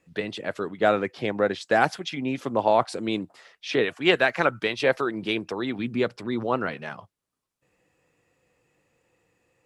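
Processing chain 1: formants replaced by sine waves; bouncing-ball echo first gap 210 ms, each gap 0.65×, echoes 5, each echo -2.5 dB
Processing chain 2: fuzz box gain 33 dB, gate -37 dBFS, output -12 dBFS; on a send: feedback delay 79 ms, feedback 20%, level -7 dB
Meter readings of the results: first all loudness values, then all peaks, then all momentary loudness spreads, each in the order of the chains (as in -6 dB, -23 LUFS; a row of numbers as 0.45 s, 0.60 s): -22.5 LUFS, -17.5 LUFS; -7.5 dBFS, -8.0 dBFS; 10 LU, 5 LU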